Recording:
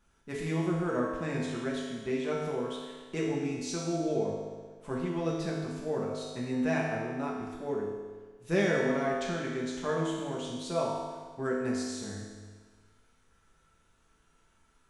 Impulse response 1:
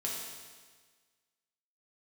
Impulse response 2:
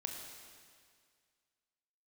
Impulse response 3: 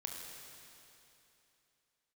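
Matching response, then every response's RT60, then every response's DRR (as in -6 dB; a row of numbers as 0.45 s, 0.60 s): 1; 1.5 s, 2.0 s, 3.0 s; -4.0 dB, 1.5 dB, 0.0 dB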